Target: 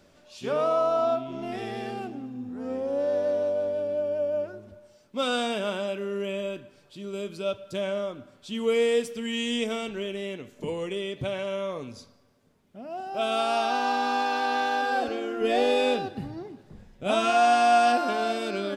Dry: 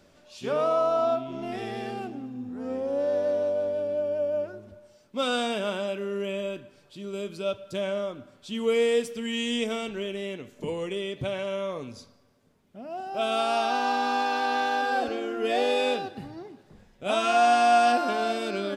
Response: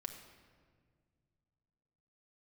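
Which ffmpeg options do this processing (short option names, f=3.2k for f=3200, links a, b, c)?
-filter_complex "[0:a]asettb=1/sr,asplit=3[a][b][c];[a]atrim=end=15.414[d];[b]atrim=start=15.41:end=17.3,asetpts=PTS-STARTPTS,afade=t=in:d=0.004:c=qsin,afade=t=out:st=1.886:d=0.004:c=qsin,lowshelf=f=280:g=7.5[e];[c]atrim=start=17.296[f];[d][e]acrossfade=d=0.004:c1=hsin:c2=qsin[g];[g][f]acrossfade=d=0.004:c1=qsin:c2=hsin"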